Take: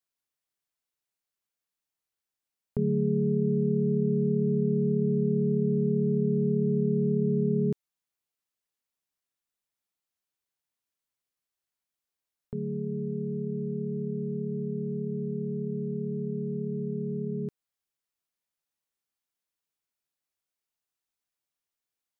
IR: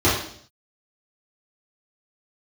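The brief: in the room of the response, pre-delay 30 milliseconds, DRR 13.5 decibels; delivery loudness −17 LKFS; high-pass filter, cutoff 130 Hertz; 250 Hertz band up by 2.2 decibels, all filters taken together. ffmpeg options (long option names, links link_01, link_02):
-filter_complex "[0:a]highpass=130,equalizer=frequency=250:width_type=o:gain=4,asplit=2[link_01][link_02];[1:a]atrim=start_sample=2205,adelay=30[link_03];[link_02][link_03]afir=irnorm=-1:irlink=0,volume=-34dB[link_04];[link_01][link_04]amix=inputs=2:normalize=0,volume=11dB"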